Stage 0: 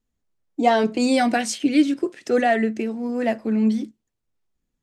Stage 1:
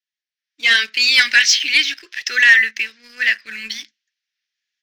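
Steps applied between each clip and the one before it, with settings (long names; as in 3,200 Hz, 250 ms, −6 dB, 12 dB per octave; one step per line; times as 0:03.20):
elliptic band-pass filter 1,700–5,700 Hz, stop band 40 dB
leveller curve on the samples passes 1
automatic gain control gain up to 12 dB
level +3.5 dB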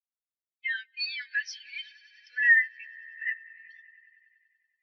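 brickwall limiter −6.5 dBFS, peak gain reduction 5 dB
on a send: echo that builds up and dies away 95 ms, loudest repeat 5, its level −13.5 dB
on the sum: every bin expanded away from the loudest bin 2.5 to 1
level −8.5 dB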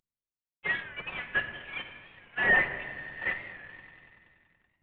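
variable-slope delta modulation 16 kbit/s
rectangular room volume 2,100 cubic metres, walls mixed, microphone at 1 metre
wow of a warped record 45 rpm, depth 100 cents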